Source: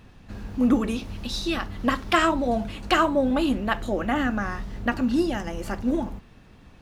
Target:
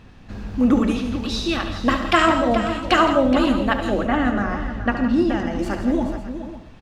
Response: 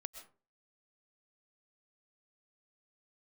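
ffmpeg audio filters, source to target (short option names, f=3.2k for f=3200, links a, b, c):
-filter_complex "[0:a]asettb=1/sr,asplit=3[a][b][c];[a]atrim=end=4.004[d];[b]atrim=start=4:end=5.59,asetpts=PTS-STARTPTS,afade=t=in:d=0.004:c=qsin,afade=t=out:st=1.586:d=0.004:c=qsin,highshelf=f=4.4k:g=-11.5[e];[c]atrim=start=5.586[f];[d][e]acrossfade=d=0.004:c1=hsin:c2=qsin[g];[g][f]acrossfade=d=0.004:c1=qsin:c2=hsin,aecho=1:1:71|166|422|546:0.316|0.251|0.282|0.15,asplit=2[h][i];[1:a]atrim=start_sample=2205,lowpass=8.7k[j];[i][j]afir=irnorm=-1:irlink=0,volume=6.5dB[k];[h][k]amix=inputs=2:normalize=0,volume=-3.5dB"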